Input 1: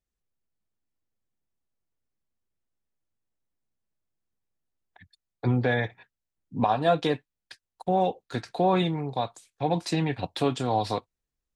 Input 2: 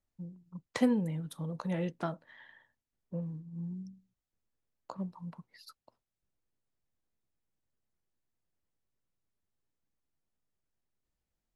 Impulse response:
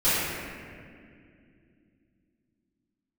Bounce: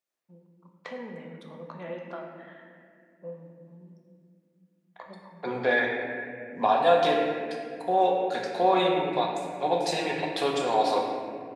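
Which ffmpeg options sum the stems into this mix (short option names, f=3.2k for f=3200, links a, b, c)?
-filter_complex "[0:a]volume=-1dB,asplit=2[a][b];[b]volume=-13.5dB[c];[1:a]lowpass=3.1k,alimiter=level_in=2.5dB:limit=-24dB:level=0:latency=1:release=119,volume=-2.5dB,adelay=100,volume=0dB,asplit=2[d][e];[e]volume=-16.5dB[f];[2:a]atrim=start_sample=2205[g];[c][f]amix=inputs=2:normalize=0[h];[h][g]afir=irnorm=-1:irlink=0[i];[a][d][i]amix=inputs=3:normalize=0,highpass=430"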